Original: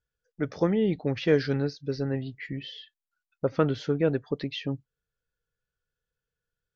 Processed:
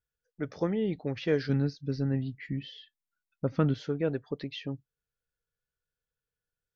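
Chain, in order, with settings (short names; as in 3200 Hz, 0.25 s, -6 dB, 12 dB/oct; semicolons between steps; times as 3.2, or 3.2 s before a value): 1.49–3.74 resonant low shelf 310 Hz +6 dB, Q 1.5; gain -5 dB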